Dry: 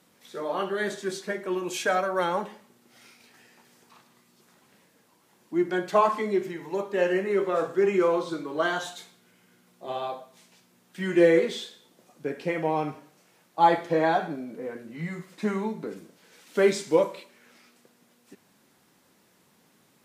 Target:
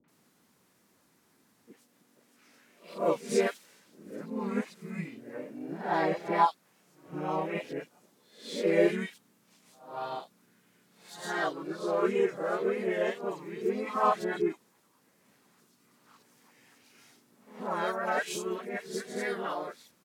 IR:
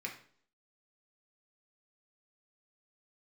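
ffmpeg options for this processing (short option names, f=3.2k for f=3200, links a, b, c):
-filter_complex "[0:a]areverse,asplit=2[a][b];[b]asetrate=52444,aresample=44100,atempo=0.840896,volume=-2dB[c];[a][c]amix=inputs=2:normalize=0,acrossover=split=590|3000[d][e][f];[e]adelay=40[g];[f]adelay=80[h];[d][g][h]amix=inputs=3:normalize=0,volume=-5.5dB"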